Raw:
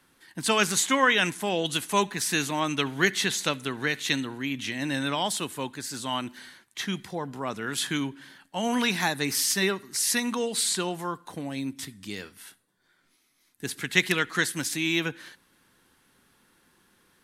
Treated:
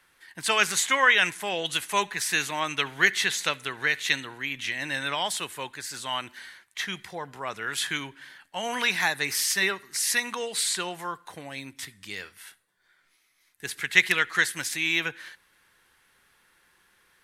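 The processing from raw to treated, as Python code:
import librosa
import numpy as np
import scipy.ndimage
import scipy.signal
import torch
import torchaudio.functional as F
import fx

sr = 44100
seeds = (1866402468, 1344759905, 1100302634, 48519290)

y = fx.graphic_eq_10(x, sr, hz=(125, 250, 2000), db=(-4, -11, 6))
y = y * 10.0 ** (-1.0 / 20.0)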